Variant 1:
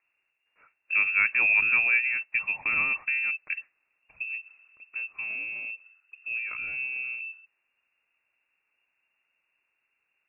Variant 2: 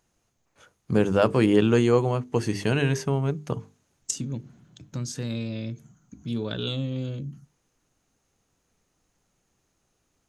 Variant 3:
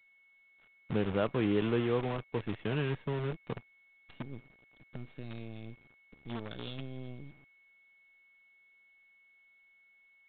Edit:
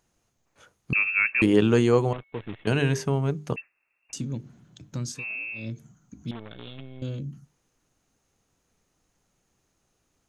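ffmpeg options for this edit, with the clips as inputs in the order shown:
-filter_complex "[0:a]asplit=3[s0][s1][s2];[2:a]asplit=2[s3][s4];[1:a]asplit=6[s5][s6][s7][s8][s9][s10];[s5]atrim=end=0.932[s11];[s0]atrim=start=0.928:end=1.422[s12];[s6]atrim=start=1.418:end=2.132[s13];[s3]atrim=start=2.128:end=2.672[s14];[s7]atrim=start=2.668:end=3.562[s15];[s1]atrim=start=3.558:end=4.132[s16];[s8]atrim=start=4.128:end=5.25[s17];[s2]atrim=start=5.09:end=5.69[s18];[s9]atrim=start=5.53:end=6.312[s19];[s4]atrim=start=6.308:end=7.022[s20];[s10]atrim=start=7.018[s21];[s11][s12]acrossfade=d=0.004:c1=hsin:c2=hsin[s22];[s22][s13]acrossfade=d=0.004:c1=hsin:c2=hsin[s23];[s23][s14]acrossfade=d=0.004:c1=hsin:c2=hsin[s24];[s24][s15]acrossfade=d=0.004:c1=hsin:c2=hsin[s25];[s25][s16]acrossfade=d=0.004:c1=hsin:c2=hsin[s26];[s26][s17]acrossfade=d=0.004:c1=hsin:c2=hsin[s27];[s27][s18]acrossfade=d=0.16:c1=tri:c2=tri[s28];[s28][s19]acrossfade=d=0.16:c1=tri:c2=tri[s29];[s29][s20]acrossfade=d=0.004:c1=hsin:c2=hsin[s30];[s30][s21]acrossfade=d=0.004:c1=hsin:c2=hsin"

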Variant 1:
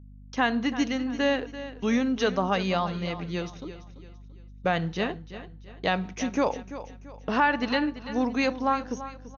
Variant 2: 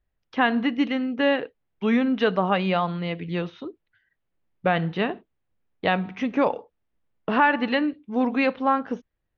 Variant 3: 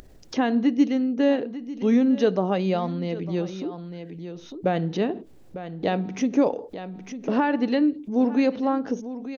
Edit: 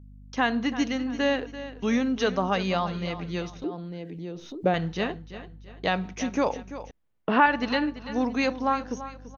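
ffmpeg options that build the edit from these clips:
-filter_complex "[0:a]asplit=3[s0][s1][s2];[s0]atrim=end=3.642[s3];[2:a]atrim=start=3.638:end=4.742[s4];[s1]atrim=start=4.738:end=6.912[s5];[1:a]atrim=start=6.908:end=7.462[s6];[s2]atrim=start=7.458[s7];[s3][s4]acrossfade=d=0.004:c1=hsin:c2=hsin[s8];[s8][s5]acrossfade=d=0.004:c1=hsin:c2=hsin[s9];[s9][s6]acrossfade=d=0.004:c1=hsin:c2=hsin[s10];[s10][s7]acrossfade=d=0.004:c1=hsin:c2=hsin"

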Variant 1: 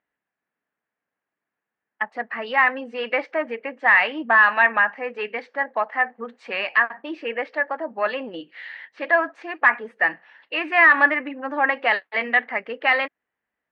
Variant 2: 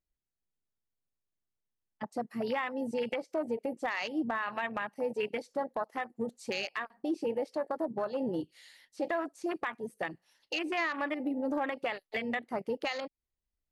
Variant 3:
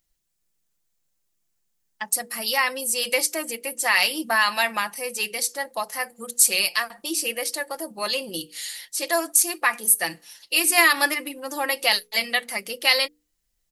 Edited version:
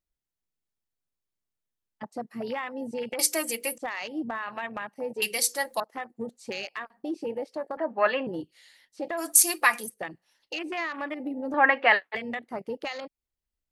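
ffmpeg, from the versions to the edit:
-filter_complex "[2:a]asplit=3[s0][s1][s2];[0:a]asplit=2[s3][s4];[1:a]asplit=6[s5][s6][s7][s8][s9][s10];[s5]atrim=end=3.192[s11];[s0]atrim=start=3.188:end=3.782[s12];[s6]atrim=start=3.778:end=5.222[s13];[s1]atrim=start=5.218:end=5.802[s14];[s7]atrim=start=5.798:end=7.772[s15];[s3]atrim=start=7.768:end=8.272[s16];[s8]atrim=start=8.268:end=9.27[s17];[s2]atrim=start=9.17:end=9.9[s18];[s9]atrim=start=9.8:end=11.542[s19];[s4]atrim=start=11.538:end=12.152[s20];[s10]atrim=start=12.148[s21];[s11][s12]acrossfade=d=0.004:c1=hsin:c2=hsin[s22];[s22][s13]acrossfade=d=0.004:c1=hsin:c2=hsin[s23];[s23][s14]acrossfade=d=0.004:c1=hsin:c2=hsin[s24];[s24][s15]acrossfade=d=0.004:c1=hsin:c2=hsin[s25];[s25][s16]acrossfade=d=0.004:c1=hsin:c2=hsin[s26];[s26][s17]acrossfade=d=0.004:c1=hsin:c2=hsin[s27];[s27][s18]acrossfade=d=0.1:c1=tri:c2=tri[s28];[s28][s19]acrossfade=d=0.1:c1=tri:c2=tri[s29];[s29][s20]acrossfade=d=0.004:c1=hsin:c2=hsin[s30];[s30][s21]acrossfade=d=0.004:c1=hsin:c2=hsin"

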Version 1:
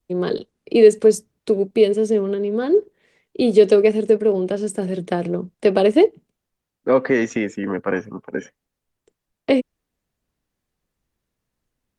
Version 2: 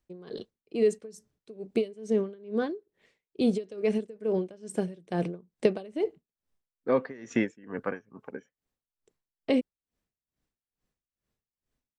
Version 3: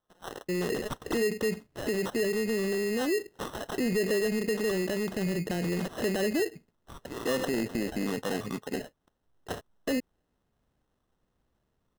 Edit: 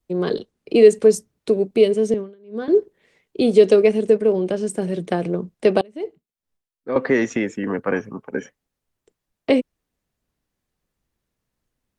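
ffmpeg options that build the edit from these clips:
-filter_complex "[1:a]asplit=2[s0][s1];[0:a]asplit=3[s2][s3][s4];[s2]atrim=end=2.142[s5];[s0]atrim=start=2.138:end=2.682[s6];[s3]atrim=start=2.678:end=5.812[s7];[s1]atrim=start=5.808:end=6.962[s8];[s4]atrim=start=6.958[s9];[s5][s6]acrossfade=d=0.004:c1=hsin:c2=hsin[s10];[s10][s7]acrossfade=d=0.004:c1=hsin:c2=hsin[s11];[s11][s8]acrossfade=d=0.004:c1=hsin:c2=hsin[s12];[s12][s9]acrossfade=d=0.004:c1=hsin:c2=hsin"

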